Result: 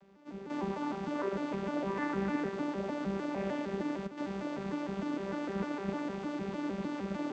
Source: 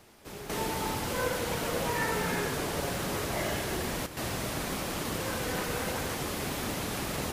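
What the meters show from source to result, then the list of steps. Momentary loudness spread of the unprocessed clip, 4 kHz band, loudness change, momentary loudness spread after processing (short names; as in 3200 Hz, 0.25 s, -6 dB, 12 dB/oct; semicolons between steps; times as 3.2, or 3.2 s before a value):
4 LU, -15.5 dB, -4.0 dB, 4 LU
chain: arpeggiated vocoder bare fifth, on G3, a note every 0.152 s; high shelf 5400 Hz -11.5 dB; AM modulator 130 Hz, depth 20%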